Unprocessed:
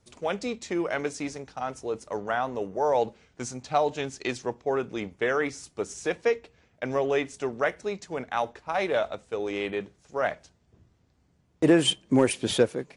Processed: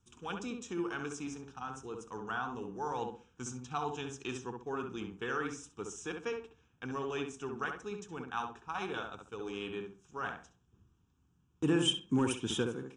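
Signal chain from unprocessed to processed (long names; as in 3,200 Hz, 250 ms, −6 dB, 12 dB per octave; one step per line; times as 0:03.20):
phaser with its sweep stopped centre 3,000 Hz, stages 8
tape delay 66 ms, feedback 32%, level −3 dB, low-pass 1,600 Hz
level −5.5 dB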